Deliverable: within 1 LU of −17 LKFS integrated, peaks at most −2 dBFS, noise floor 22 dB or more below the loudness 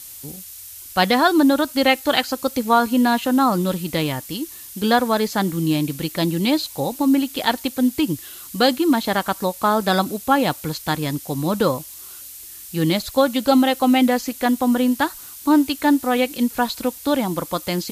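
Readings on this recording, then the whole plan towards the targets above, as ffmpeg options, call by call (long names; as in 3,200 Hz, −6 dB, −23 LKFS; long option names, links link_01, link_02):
background noise floor −38 dBFS; target noise floor −42 dBFS; integrated loudness −20.0 LKFS; sample peak −2.0 dBFS; target loudness −17.0 LKFS
→ -af "afftdn=noise_reduction=6:noise_floor=-38"
-af "volume=3dB,alimiter=limit=-2dB:level=0:latency=1"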